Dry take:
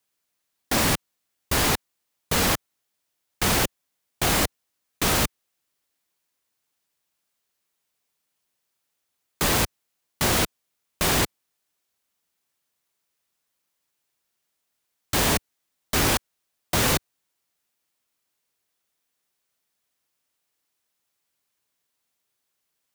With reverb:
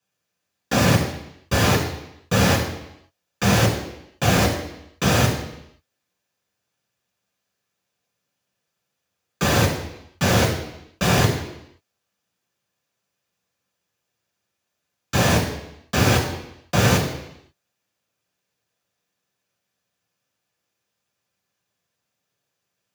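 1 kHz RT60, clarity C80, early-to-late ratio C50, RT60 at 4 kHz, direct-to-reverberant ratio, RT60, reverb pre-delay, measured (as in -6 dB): 0.85 s, 8.0 dB, 6.0 dB, 0.85 s, -2.5 dB, 0.85 s, 3 ms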